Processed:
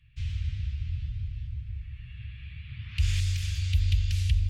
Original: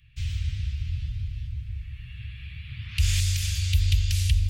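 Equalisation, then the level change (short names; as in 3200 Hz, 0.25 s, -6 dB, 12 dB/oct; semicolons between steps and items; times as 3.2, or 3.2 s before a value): LPF 2800 Hz 6 dB/oct; -2.5 dB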